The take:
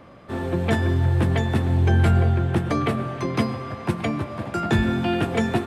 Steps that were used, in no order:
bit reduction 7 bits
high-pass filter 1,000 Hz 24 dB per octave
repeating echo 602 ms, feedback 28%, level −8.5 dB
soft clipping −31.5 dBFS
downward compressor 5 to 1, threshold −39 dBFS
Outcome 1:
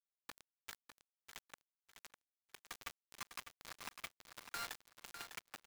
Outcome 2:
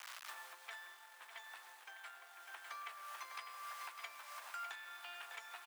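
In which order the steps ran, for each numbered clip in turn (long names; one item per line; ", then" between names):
downward compressor, then soft clipping, then high-pass filter, then bit reduction, then repeating echo
repeating echo, then bit reduction, then downward compressor, then soft clipping, then high-pass filter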